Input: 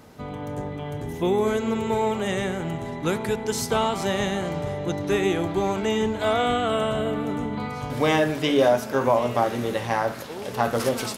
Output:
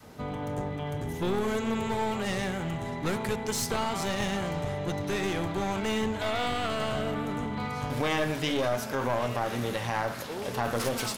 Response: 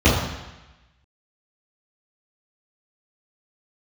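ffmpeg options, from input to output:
-af "alimiter=limit=-14.5dB:level=0:latency=1:release=64,adynamicequalizer=threshold=0.0158:dfrequency=360:dqfactor=0.85:tfrequency=360:tqfactor=0.85:attack=5:release=100:ratio=0.375:range=3:mode=cutabove:tftype=bell,aeval=exprs='clip(val(0),-1,0.0316)':channel_layout=same"

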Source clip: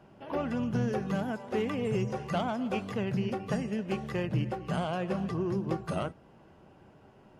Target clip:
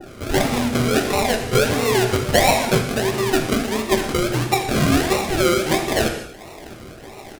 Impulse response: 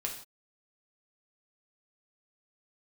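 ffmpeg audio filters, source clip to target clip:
-filter_complex "[0:a]equalizer=frequency=1100:width_type=o:width=2.4:gain=11.5,aecho=1:1:2.8:0.96,asplit=2[link_01][link_02];[link_02]acompressor=threshold=-39dB:ratio=6,volume=1dB[link_03];[link_01][link_03]amix=inputs=2:normalize=0,acrusher=samples=39:mix=1:aa=0.000001:lfo=1:lforange=23.4:lforate=1.5,asplit=2[link_04][link_05];[1:a]atrim=start_sample=2205,atrim=end_sample=6615,asetrate=25578,aresample=44100[link_06];[link_05][link_06]afir=irnorm=-1:irlink=0,volume=0dB[link_07];[link_04][link_07]amix=inputs=2:normalize=0,adynamicequalizer=threshold=0.0141:dfrequency=1600:dqfactor=0.7:tfrequency=1600:tqfactor=0.7:attack=5:release=100:ratio=0.375:range=1.5:mode=boostabove:tftype=highshelf,volume=-5dB"

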